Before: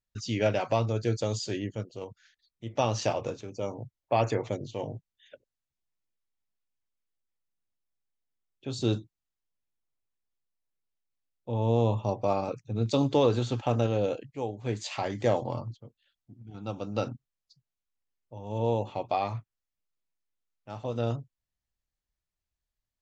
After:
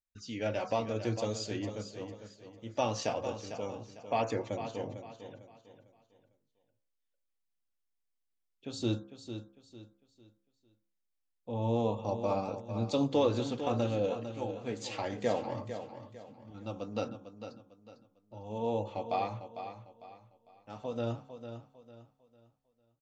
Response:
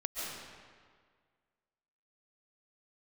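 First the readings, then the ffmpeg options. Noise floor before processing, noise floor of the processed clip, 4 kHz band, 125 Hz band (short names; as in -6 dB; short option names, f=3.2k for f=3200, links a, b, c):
under -85 dBFS, -81 dBFS, -4.0 dB, -8.0 dB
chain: -filter_complex "[0:a]bandreject=f=67.13:t=h:w=4,bandreject=f=134.26:t=h:w=4,bandreject=f=201.39:t=h:w=4,bandreject=f=268.52:t=h:w=4,bandreject=f=335.65:t=h:w=4,bandreject=f=402.78:t=h:w=4,bandreject=f=469.91:t=h:w=4,bandreject=f=537.04:t=h:w=4,bandreject=f=604.17:t=h:w=4,bandreject=f=671.3:t=h:w=4,bandreject=f=738.43:t=h:w=4,bandreject=f=805.56:t=h:w=4,bandreject=f=872.69:t=h:w=4,bandreject=f=939.82:t=h:w=4,bandreject=f=1.00695k:t=h:w=4,bandreject=f=1.07408k:t=h:w=4,bandreject=f=1.14121k:t=h:w=4,bandreject=f=1.20834k:t=h:w=4,bandreject=f=1.27547k:t=h:w=4,bandreject=f=1.3426k:t=h:w=4,bandreject=f=1.40973k:t=h:w=4,bandreject=f=1.47686k:t=h:w=4,bandreject=f=1.54399k:t=h:w=4,bandreject=f=1.61112k:t=h:w=4,bandreject=f=1.67825k:t=h:w=4,dynaudnorm=f=210:g=5:m=6dB,flanger=delay=3.3:depth=1.1:regen=-40:speed=1.8:shape=triangular,asplit=2[a][b];[b]aecho=0:1:451|902|1353|1804:0.316|0.104|0.0344|0.0114[c];[a][c]amix=inputs=2:normalize=0,volume=-6dB"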